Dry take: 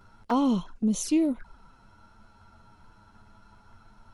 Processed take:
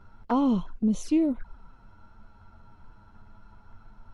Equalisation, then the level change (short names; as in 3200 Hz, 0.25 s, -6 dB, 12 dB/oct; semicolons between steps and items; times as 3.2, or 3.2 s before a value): LPF 2200 Hz 6 dB/oct; low shelf 73 Hz +8 dB; 0.0 dB